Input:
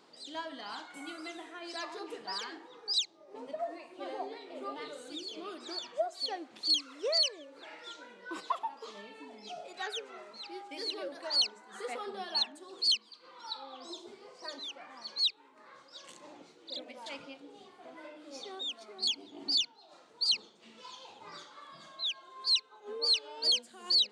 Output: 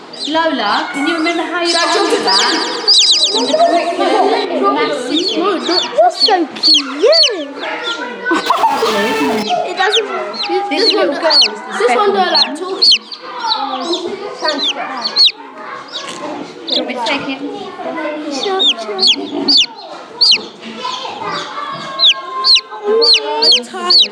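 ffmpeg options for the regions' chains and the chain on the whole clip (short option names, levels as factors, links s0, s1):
-filter_complex "[0:a]asettb=1/sr,asplit=3[s0][s1][s2];[s0]atrim=end=1.654[s3];[s1]atrim=start=1.65:end=4.45,asetpts=PTS-STARTPTS,afade=t=in:d=0.004:c=qsin,afade=t=out:st=2.796:d=0.004:c=qsin,equalizer=f=9000:w=0.6:g=13,aecho=1:1:127|254|381|508|635|762|889:0.355|0.209|0.124|0.0729|0.043|0.0254|0.015,atrim=end_sample=123480[s4];[s2]atrim=start=4.446[s5];[s3][s4]acrossfade=d=0.004:c1=hsin:c2=qsin[s6];[s6][s5]acrossfade=d=0.004:c1=qsin:c2=hsin,asettb=1/sr,asplit=3[s7][s8][s9];[s7]atrim=end=8.464[s10];[s8]atrim=start=8.46:end=9.43,asetpts=PTS-STARTPTS,afade=t=in:d=0.004:c=qsin,afade=t=out:st=0.966:d=0.004:c=qsin,aeval=exprs='val(0)+0.5*0.00841*sgn(val(0))':c=same,highpass=120,acompressor=threshold=0.0141:ratio=3:attack=3.2:release=140:knee=1:detection=peak[s11];[s9]atrim=start=9.426[s12];[s10][s11]acrossfade=d=0.004:c1=hsin:c2=qsin[s13];[s13][s12]acrossfade=d=0.004:c1=qsin:c2=hsin,lowpass=f=3400:p=1,bandreject=f=540:w=12,alimiter=level_in=33.5:limit=0.891:release=50:level=0:latency=1,volume=0.891"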